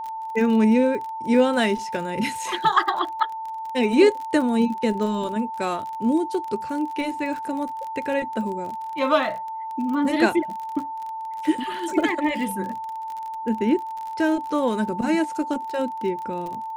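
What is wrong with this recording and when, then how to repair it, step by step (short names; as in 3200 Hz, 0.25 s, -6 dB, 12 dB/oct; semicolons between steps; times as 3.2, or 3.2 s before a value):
crackle 35/s -30 dBFS
tone 890 Hz -29 dBFS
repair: de-click; notch 890 Hz, Q 30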